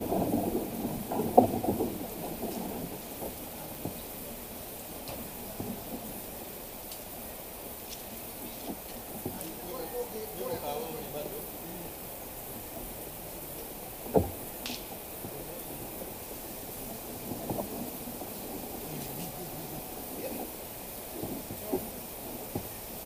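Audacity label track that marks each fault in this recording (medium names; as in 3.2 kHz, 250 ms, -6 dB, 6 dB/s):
3.750000	3.750000	pop
12.760000	12.760000	pop
19.080000	19.080000	pop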